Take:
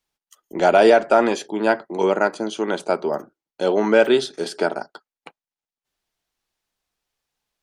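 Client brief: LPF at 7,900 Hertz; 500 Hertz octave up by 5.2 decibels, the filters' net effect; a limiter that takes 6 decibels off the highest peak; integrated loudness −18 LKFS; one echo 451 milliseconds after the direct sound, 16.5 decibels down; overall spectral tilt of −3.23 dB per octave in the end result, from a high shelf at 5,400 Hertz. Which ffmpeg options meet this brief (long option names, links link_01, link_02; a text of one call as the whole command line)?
ffmpeg -i in.wav -af "lowpass=7900,equalizer=frequency=500:width_type=o:gain=6.5,highshelf=frequency=5400:gain=3.5,alimiter=limit=-4.5dB:level=0:latency=1,aecho=1:1:451:0.15,volume=-0.5dB" out.wav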